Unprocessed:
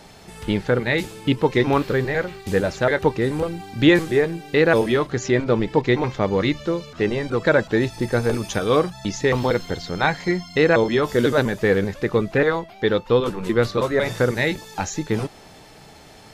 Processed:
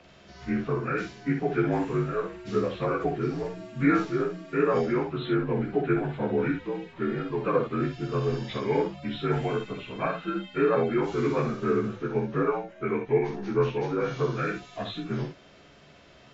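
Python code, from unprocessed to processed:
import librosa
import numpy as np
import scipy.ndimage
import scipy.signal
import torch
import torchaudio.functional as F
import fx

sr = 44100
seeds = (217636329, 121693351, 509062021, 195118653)

y = fx.partial_stretch(x, sr, pct=83)
y = fx.room_early_taps(y, sr, ms=(14, 61), db=(-6.5, -5.5))
y = F.gain(torch.from_numpy(y), -7.5).numpy()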